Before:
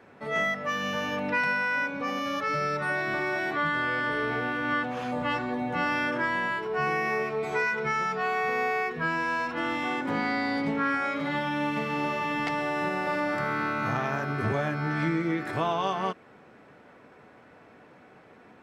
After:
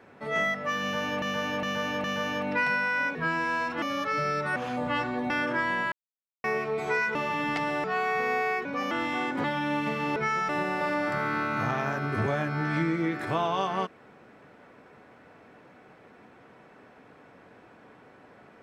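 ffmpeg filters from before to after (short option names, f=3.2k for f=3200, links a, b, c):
-filter_complex "[0:a]asplit=17[a][b][c][d][e][f][g][h][i][j][k][l][m][n][o][p][q];[a]atrim=end=1.222[r];[b]atrim=start=0.808:end=1.222[s];[c]atrim=start=0.808:end=1.222[t];[d]atrim=start=0.808:end=1.922[u];[e]atrim=start=8.938:end=9.612[v];[f]atrim=start=2.178:end=2.922[w];[g]atrim=start=4.908:end=5.652[x];[h]atrim=start=5.948:end=6.57,asetpts=PTS-STARTPTS,afade=t=out:st=0.618:d=0.004:c=hsin[y];[i]atrim=start=6.57:end=7.09,asetpts=PTS-STARTPTS,volume=0[z];[j]atrim=start=7.09:end=7.802,asetpts=PTS-STARTPTS,afade=t=in:d=0.004:c=hsin[aa];[k]atrim=start=12.058:end=12.752[ab];[l]atrim=start=8.128:end=8.942[ac];[m]atrim=start=1.918:end=2.182[ad];[n]atrim=start=9.608:end=10.142[ae];[o]atrim=start=11.338:end=12.062[af];[p]atrim=start=7.798:end=8.132[ag];[q]atrim=start=12.748[ah];[r][s]acrossfade=d=0.004:c1=hsin:c2=hsin[ai];[ai][t]acrossfade=d=0.004:c1=hsin:c2=hsin[aj];[aj][u]acrossfade=d=0.004:c1=hsin:c2=hsin[ak];[ak][v]acrossfade=d=0.004:c1=hsin:c2=hsin[al];[al][w]acrossfade=d=0.004:c1=hsin:c2=hsin[am];[am][x]acrossfade=d=0.004:c1=hsin:c2=hsin[an];[y][z][aa]concat=n=3:v=0:a=1[ao];[an][ao]acrossfade=d=0.004:c1=hsin:c2=hsin[ap];[ap][ab]acrossfade=d=0.004:c1=hsin:c2=hsin[aq];[aq][ac]acrossfade=d=0.004:c1=hsin:c2=hsin[ar];[ar][ad]acrossfade=d=0.004:c1=hsin:c2=hsin[as];[as][ae]acrossfade=d=0.004:c1=hsin:c2=hsin[at];[at][af]acrossfade=d=0.004:c1=hsin:c2=hsin[au];[au][ag]acrossfade=d=0.004:c1=hsin:c2=hsin[av];[av][ah]acrossfade=d=0.004:c1=hsin:c2=hsin"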